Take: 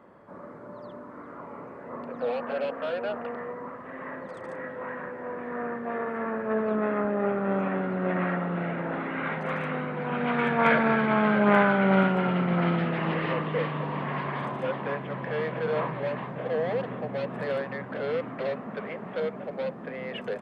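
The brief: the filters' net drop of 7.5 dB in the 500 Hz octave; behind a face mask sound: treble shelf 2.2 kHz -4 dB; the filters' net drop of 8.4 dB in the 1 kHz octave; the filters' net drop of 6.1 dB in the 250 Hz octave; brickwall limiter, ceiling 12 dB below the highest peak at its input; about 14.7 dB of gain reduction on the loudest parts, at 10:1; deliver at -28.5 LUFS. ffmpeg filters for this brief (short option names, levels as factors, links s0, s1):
-af "equalizer=f=250:t=o:g=-7.5,equalizer=f=500:t=o:g=-4.5,equalizer=f=1000:t=o:g=-8.5,acompressor=threshold=0.0141:ratio=10,alimiter=level_in=5.96:limit=0.0631:level=0:latency=1,volume=0.168,highshelf=f=2200:g=-4,volume=10"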